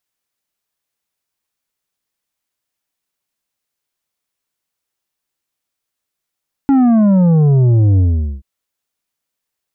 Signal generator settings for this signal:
bass drop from 280 Hz, over 1.73 s, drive 7.5 dB, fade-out 0.44 s, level −8.5 dB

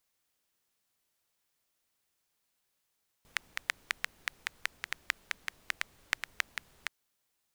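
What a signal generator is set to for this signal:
rain-like ticks over hiss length 3.63 s, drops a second 5.4, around 1,900 Hz, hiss −22.5 dB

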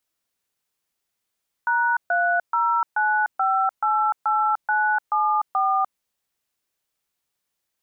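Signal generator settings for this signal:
touch tones "#309588974", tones 298 ms, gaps 133 ms, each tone −20.5 dBFS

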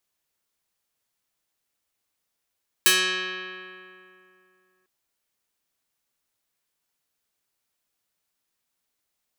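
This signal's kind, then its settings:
Karplus-Strong string F#3, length 2.00 s, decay 2.79 s, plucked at 0.27, medium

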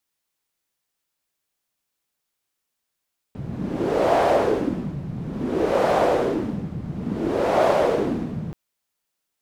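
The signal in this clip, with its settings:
wind from filtered noise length 5.18 s, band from 150 Hz, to 640 Hz, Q 2.9, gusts 3, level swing 12 dB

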